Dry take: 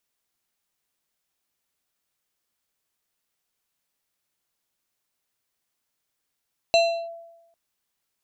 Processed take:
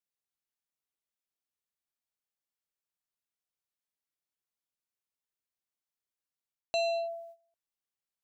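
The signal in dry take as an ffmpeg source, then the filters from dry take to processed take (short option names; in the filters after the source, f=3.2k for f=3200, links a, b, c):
-f lavfi -i "aevalsrc='0.237*pow(10,-3*t/0.98)*sin(2*PI*672*t+0.74*clip(1-t/0.35,0,1)*sin(2*PI*5.03*672*t))':d=0.8:s=44100"
-af "agate=range=-16dB:threshold=-50dB:ratio=16:detection=peak,areverse,acompressor=threshold=-30dB:ratio=4,areverse"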